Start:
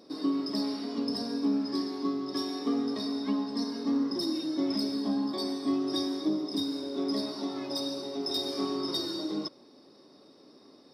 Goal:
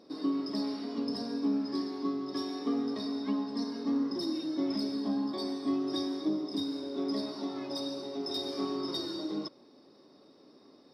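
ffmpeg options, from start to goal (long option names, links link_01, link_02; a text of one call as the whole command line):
ffmpeg -i in.wav -af "highshelf=frequency=6800:gain=-9,volume=-2dB" out.wav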